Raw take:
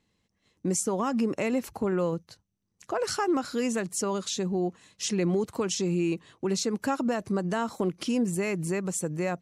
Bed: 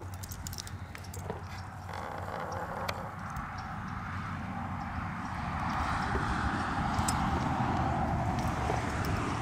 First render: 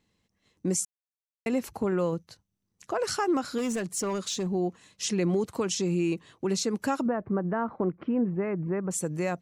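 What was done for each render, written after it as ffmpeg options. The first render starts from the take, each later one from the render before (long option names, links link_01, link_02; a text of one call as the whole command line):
ffmpeg -i in.wav -filter_complex "[0:a]asettb=1/sr,asplit=3[link_01][link_02][link_03];[link_01]atrim=end=3.584[link_04];[link_02]atrim=start=3.58:end=4.51,asetpts=PTS-STARTPTS,afade=type=in:duration=0.004:curve=qsin,afade=type=out:start_time=0.926:duration=0.004:curve=qsin,asoftclip=type=hard:threshold=-25dB[link_05];[link_03]atrim=start=4.506[link_06];[link_04][link_05]acrossfade=duration=0.004:curve1=hsin:curve2=qsin[link_07];[link_07][link_06]acrossfade=duration=0.004:curve1=qsin:curve2=hsin,asettb=1/sr,asplit=3[link_08][link_09][link_10];[link_08]atrim=end=7.064[link_11];[link_09]atrim=start=7.06:end=8.91,asetpts=PTS-STARTPTS,afade=type=in:duration=0.004:curve=qsin,afade=type=out:start_time=1.846:duration=0.004:curve=qsin,lowpass=frequency=1700:width=0.5412,lowpass=frequency=1700:width=1.3066[link_12];[link_10]atrim=start=8.906[link_13];[link_11][link_12]acrossfade=duration=0.004:curve1=hsin:curve2=qsin[link_14];[link_14][link_13]acrossfade=duration=0.004:curve1=qsin:curve2=hsin,asplit=3[link_15][link_16][link_17];[link_15]atrim=end=0.85,asetpts=PTS-STARTPTS,afade=type=out:start_time=0.846:duration=0.004:curve=hsin[link_18];[link_16]atrim=start=0.85:end=1.46,asetpts=PTS-STARTPTS,volume=0[link_19];[link_17]atrim=start=1.46,asetpts=PTS-STARTPTS,afade=type=in:duration=0.004:curve=hsin[link_20];[link_18][link_19][link_20]concat=n=3:v=0:a=1" out.wav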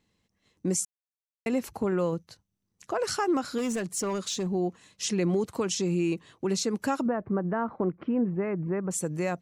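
ffmpeg -i in.wav -af anull out.wav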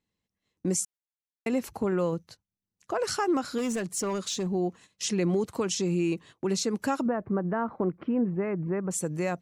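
ffmpeg -i in.wav -af "agate=range=-11dB:threshold=-48dB:ratio=16:detection=peak" out.wav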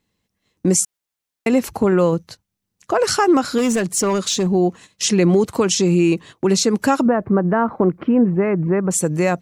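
ffmpeg -i in.wav -af "volume=11.5dB" out.wav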